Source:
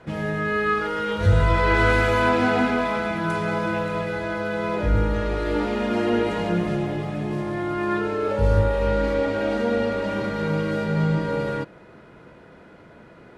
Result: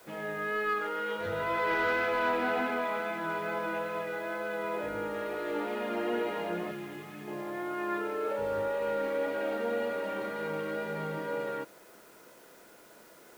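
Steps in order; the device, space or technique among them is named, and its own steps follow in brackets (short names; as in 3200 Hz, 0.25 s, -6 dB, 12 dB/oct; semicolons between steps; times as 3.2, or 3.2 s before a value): tape answering machine (BPF 340–3300 Hz; soft clip -14 dBFS, distortion -22 dB; wow and flutter 15 cents; white noise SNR 27 dB); 6.71–7.28 bell 610 Hz -13.5 dB 1 oct; gain -6.5 dB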